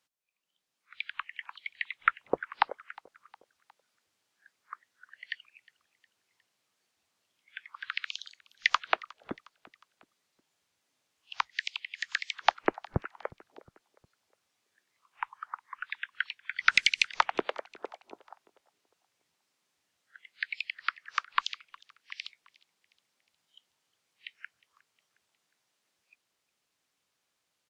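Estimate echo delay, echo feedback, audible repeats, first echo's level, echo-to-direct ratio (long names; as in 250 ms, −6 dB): 360 ms, 51%, 2, −24.0 dB, −23.0 dB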